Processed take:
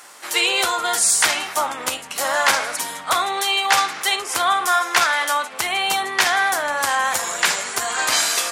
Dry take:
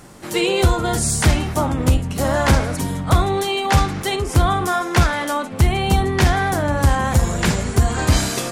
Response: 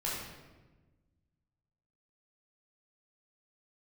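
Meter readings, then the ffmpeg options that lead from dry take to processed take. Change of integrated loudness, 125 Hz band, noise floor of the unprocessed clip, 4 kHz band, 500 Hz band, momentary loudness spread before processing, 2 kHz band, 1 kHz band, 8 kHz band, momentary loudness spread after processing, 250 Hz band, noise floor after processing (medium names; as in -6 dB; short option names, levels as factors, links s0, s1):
0.0 dB, under -30 dB, -29 dBFS, +5.5 dB, -6.5 dB, 4 LU, +5.0 dB, +1.5 dB, +5.5 dB, 6 LU, -17.0 dB, -36 dBFS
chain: -af "highpass=1000,volume=1.88"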